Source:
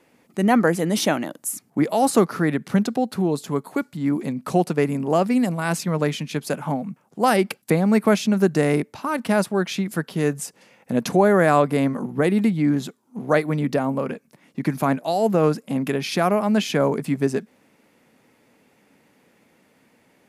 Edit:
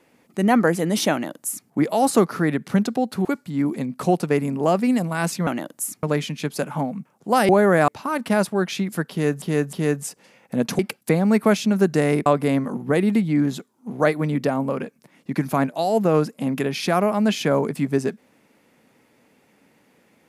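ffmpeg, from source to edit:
-filter_complex "[0:a]asplit=10[s0][s1][s2][s3][s4][s5][s6][s7][s8][s9];[s0]atrim=end=3.252[s10];[s1]atrim=start=3.718:end=5.942[s11];[s2]atrim=start=1.118:end=1.682[s12];[s3]atrim=start=5.938:end=7.402[s13];[s4]atrim=start=11.158:end=11.552[s14];[s5]atrim=start=8.868:end=10.412[s15];[s6]atrim=start=10.098:end=10.412[s16];[s7]atrim=start=10.098:end=11.162[s17];[s8]atrim=start=7.398:end=8.872[s18];[s9]atrim=start=11.548[s19];[s10][s11]acrossfade=d=0.004:c1=hsin:c2=hsin[s20];[s20][s12]acrossfade=d=0.004:c1=hsin:c2=hsin[s21];[s21][s13]acrossfade=d=0.004:c1=hsin:c2=hsin[s22];[s22][s14]acrossfade=d=0.004:c1=hsin:c2=hsin[s23];[s23][s15]acrossfade=d=0.004:c1=hsin:c2=hsin[s24];[s24][s16]acrossfade=d=0.004:c1=hsin:c2=hsin[s25];[s25][s17]acrossfade=d=0.004:c1=hsin:c2=hsin[s26];[s26][s18]acrossfade=d=0.004:c1=hsin:c2=hsin[s27];[s27][s19]acrossfade=d=0.004:c1=hsin:c2=hsin"

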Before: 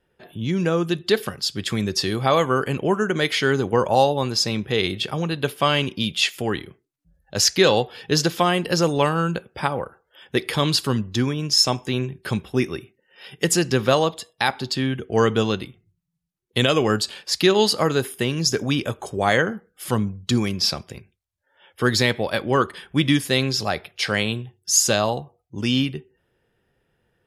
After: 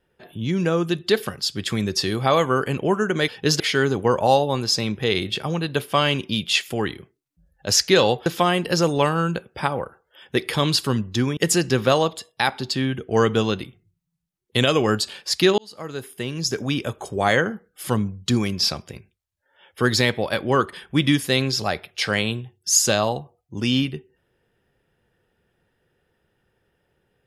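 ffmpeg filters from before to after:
-filter_complex "[0:a]asplit=6[s0][s1][s2][s3][s4][s5];[s0]atrim=end=3.282[s6];[s1]atrim=start=7.938:end=8.262[s7];[s2]atrim=start=3.278:end=7.942[s8];[s3]atrim=start=8.258:end=11.372[s9];[s4]atrim=start=13.378:end=17.59,asetpts=PTS-STARTPTS,afade=t=out:st=4.208:d=0.004:c=hsin[s10];[s5]atrim=start=17.59,asetpts=PTS-STARTPTS,afade=t=in:d=1.91:c=qsin[s11];[s6][s7]acrossfade=d=0.004:c1=hsin:c2=hsin[s12];[s12][s8]acrossfade=d=0.004:c1=hsin:c2=hsin[s13];[s13][s9]acrossfade=d=0.004:c1=hsin:c2=hsin[s14];[s10][s11]concat=n=2:v=0:a=1[s15];[s14][s15]acrossfade=d=0.004:c1=hsin:c2=hsin"

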